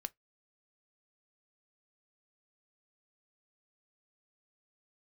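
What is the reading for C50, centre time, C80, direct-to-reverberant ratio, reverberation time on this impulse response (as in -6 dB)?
31.5 dB, 2 ms, 46.0 dB, 12.5 dB, no single decay rate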